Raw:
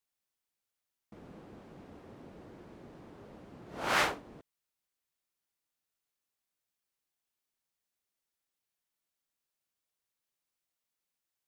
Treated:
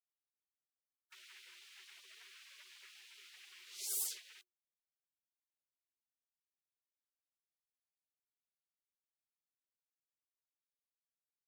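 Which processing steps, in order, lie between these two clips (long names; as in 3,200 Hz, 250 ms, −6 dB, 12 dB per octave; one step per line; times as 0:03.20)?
hard clipping −27 dBFS, distortion −10 dB
gate on every frequency bin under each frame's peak −25 dB weak
frequency shifter +360 Hz
level +12 dB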